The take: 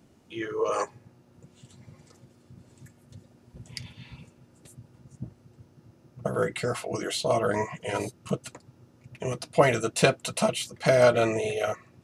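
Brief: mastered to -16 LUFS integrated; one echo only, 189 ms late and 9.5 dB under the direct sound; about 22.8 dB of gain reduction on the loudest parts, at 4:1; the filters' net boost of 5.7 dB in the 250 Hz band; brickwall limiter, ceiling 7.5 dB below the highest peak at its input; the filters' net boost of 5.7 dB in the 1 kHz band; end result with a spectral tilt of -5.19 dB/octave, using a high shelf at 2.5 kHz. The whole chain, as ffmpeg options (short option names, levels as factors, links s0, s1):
-af "equalizer=f=250:t=o:g=7.5,equalizer=f=1000:t=o:g=8,highshelf=f=2500:g=-3.5,acompressor=threshold=0.0112:ratio=4,alimiter=level_in=2:limit=0.0631:level=0:latency=1,volume=0.501,aecho=1:1:189:0.335,volume=23.7"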